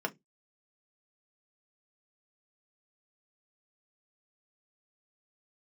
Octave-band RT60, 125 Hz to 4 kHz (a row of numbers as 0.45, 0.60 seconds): 0.30, 0.25, 0.20, 0.10, 0.15, 0.15 seconds